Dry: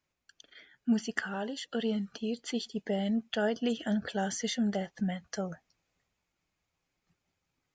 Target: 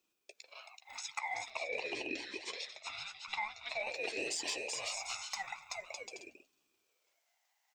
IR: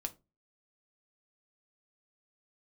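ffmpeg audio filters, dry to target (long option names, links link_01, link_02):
-filter_complex "[0:a]asplit=2[link_01][link_02];[link_02]adelay=14,volume=-13dB[link_03];[link_01][link_03]amix=inputs=2:normalize=0,aecho=1:1:380|608|744.8|826.9|876.1:0.631|0.398|0.251|0.158|0.1,alimiter=limit=-20dB:level=0:latency=1:release=465,highpass=frequency=1400:width_type=q:width=13,aderivative,acompressor=threshold=-38dB:ratio=6,asoftclip=type=tanh:threshold=-31dB,asettb=1/sr,asplit=3[link_04][link_05][link_06];[link_04]atrim=end=1.504[link_07];[link_05]atrim=start=1.5:end=3.91,asetpts=PTS-STARTPTS,afade=type=in:duration=0.004:curve=qsin,afade=type=out:start_time=2.406:duration=0.004:curve=qsin,lowpass=4300[link_08];[link_06]atrim=start=3.906[link_09];[link_07][link_08]acrossfade=duration=0.004:curve1=hsin:curve2=qsin[link_10];[link_10][link_09]acrossfade=duration=0.004:curve1=qsin:curve2=hsin,aeval=exprs='val(0)*sin(2*PI*840*n/s+840*0.3/0.46*sin(2*PI*0.46*n/s))':channel_layout=same,volume=8dB"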